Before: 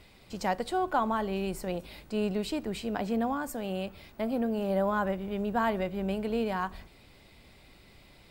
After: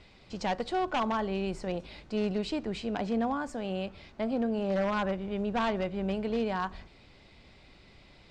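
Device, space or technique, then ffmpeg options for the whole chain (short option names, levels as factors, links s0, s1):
synthesiser wavefolder: -af "aeval=exprs='0.075*(abs(mod(val(0)/0.075+3,4)-2)-1)':c=same,lowpass=f=6600:w=0.5412,lowpass=f=6600:w=1.3066"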